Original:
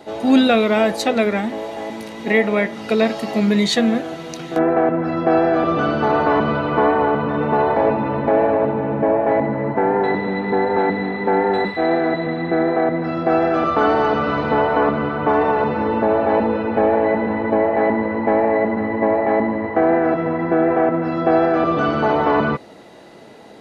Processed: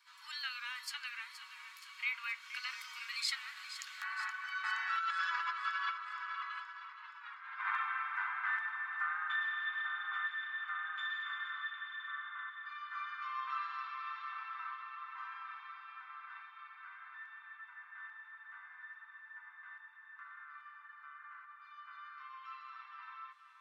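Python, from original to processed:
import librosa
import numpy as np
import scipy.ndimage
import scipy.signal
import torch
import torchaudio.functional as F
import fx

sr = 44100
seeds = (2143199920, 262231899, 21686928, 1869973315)

p1 = fx.doppler_pass(x, sr, speed_mps=41, closest_m=8.2, pass_at_s=7.16)
p2 = scipy.signal.sosfilt(scipy.signal.butter(12, 1100.0, 'highpass', fs=sr, output='sos'), p1)
p3 = fx.over_compress(p2, sr, threshold_db=-47.0, ratio=-0.5)
p4 = p3 + fx.echo_feedback(p3, sr, ms=472, feedback_pct=59, wet_db=-12, dry=0)
y = F.gain(torch.from_numpy(p4), 9.5).numpy()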